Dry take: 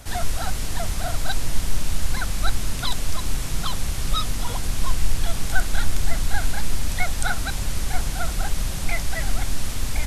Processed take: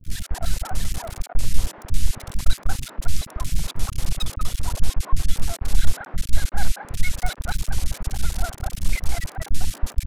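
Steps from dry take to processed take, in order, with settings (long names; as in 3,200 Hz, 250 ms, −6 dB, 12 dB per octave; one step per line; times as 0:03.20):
low-shelf EQ 130 Hz +4.5 dB
half-wave rectification
three-band delay without the direct sound lows, highs, mids 40/230 ms, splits 310/1,700 Hz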